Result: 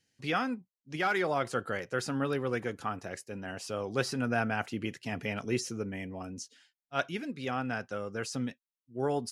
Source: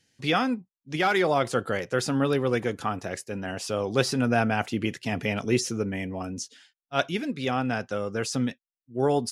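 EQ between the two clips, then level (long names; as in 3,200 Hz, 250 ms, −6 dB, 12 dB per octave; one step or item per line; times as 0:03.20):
notch filter 3,500 Hz, Q 18
dynamic equaliser 1,500 Hz, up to +4 dB, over −38 dBFS, Q 1.7
−7.5 dB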